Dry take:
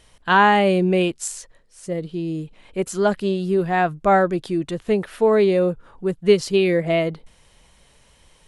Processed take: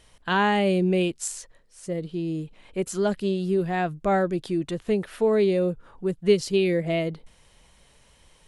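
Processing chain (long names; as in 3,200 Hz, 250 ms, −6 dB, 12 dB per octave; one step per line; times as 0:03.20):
dynamic equaliser 1,100 Hz, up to −7 dB, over −31 dBFS, Q 0.71
level −2.5 dB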